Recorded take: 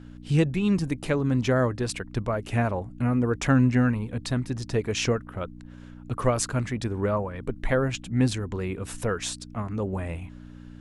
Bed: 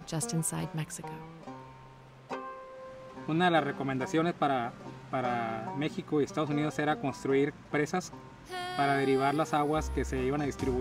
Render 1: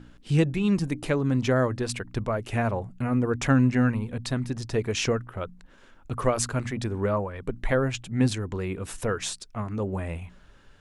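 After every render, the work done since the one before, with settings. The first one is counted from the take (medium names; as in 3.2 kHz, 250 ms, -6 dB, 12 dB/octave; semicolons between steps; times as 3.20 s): de-hum 60 Hz, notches 5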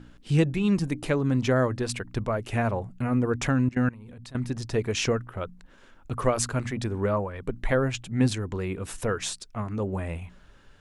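3.49–4.35 s: level held to a coarse grid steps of 22 dB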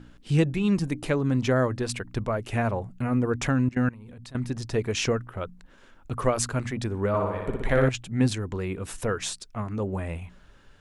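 7.08–7.89 s: flutter echo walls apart 10.3 m, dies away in 1.1 s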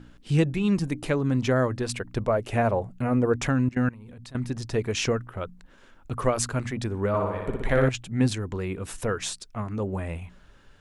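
1.88–3.38 s: dynamic bell 570 Hz, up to +6 dB, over -42 dBFS, Q 1.2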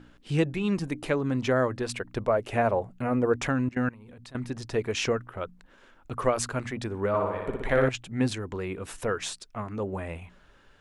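tone controls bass -6 dB, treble -4 dB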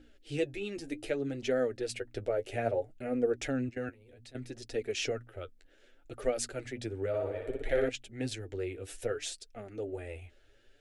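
static phaser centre 430 Hz, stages 4; flange 0.63 Hz, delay 3.6 ms, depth 8.1 ms, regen +31%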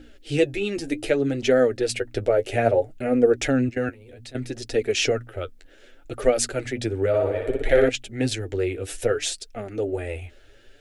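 trim +11.5 dB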